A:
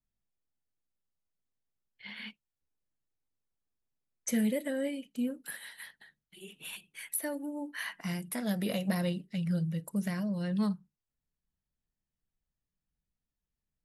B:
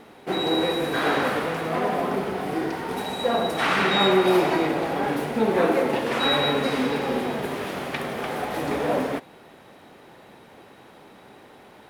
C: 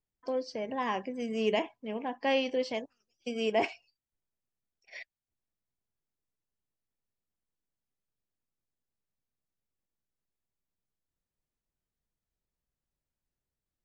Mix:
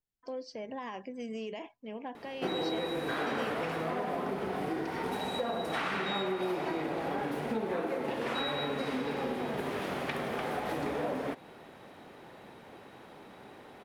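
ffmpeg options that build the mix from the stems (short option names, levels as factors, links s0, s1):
-filter_complex "[1:a]highshelf=f=4900:g=-4.5,acompressor=threshold=0.0398:ratio=6,adelay=2150,volume=0.75[s0];[2:a]volume=0.631,alimiter=level_in=2.24:limit=0.0631:level=0:latency=1:release=66,volume=0.447,volume=1[s1];[s0][s1]amix=inputs=2:normalize=0"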